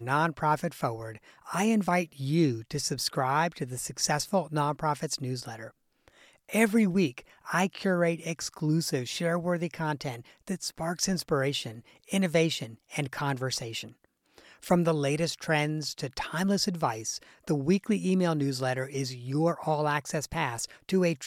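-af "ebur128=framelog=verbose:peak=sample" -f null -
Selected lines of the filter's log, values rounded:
Integrated loudness:
  I:         -29.1 LUFS
  Threshold: -39.6 LUFS
Loudness range:
  LRA:         2.4 LU
  Threshold: -49.6 LUFS
  LRA low:   -30.9 LUFS
  LRA high:  -28.5 LUFS
Sample peak:
  Peak:       -9.0 dBFS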